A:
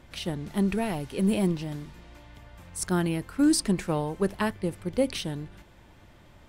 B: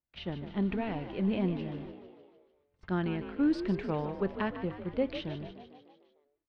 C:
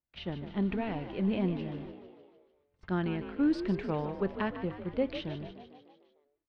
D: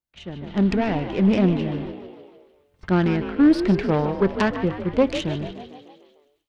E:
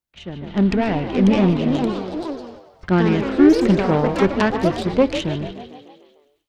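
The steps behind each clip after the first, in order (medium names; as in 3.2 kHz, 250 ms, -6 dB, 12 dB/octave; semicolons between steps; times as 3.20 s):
low-pass 3.4 kHz 24 dB/octave; gate -42 dBFS, range -38 dB; on a send: frequency-shifting echo 150 ms, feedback 57%, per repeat +47 Hz, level -11 dB; on the sum: trim -5.5 dB
no audible change
self-modulated delay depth 0.16 ms; thinning echo 134 ms, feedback 70%, high-pass 1.1 kHz, level -21.5 dB; level rider gain up to 12 dB
ever faster or slower copies 693 ms, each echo +4 st, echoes 2, each echo -6 dB; trim +2.5 dB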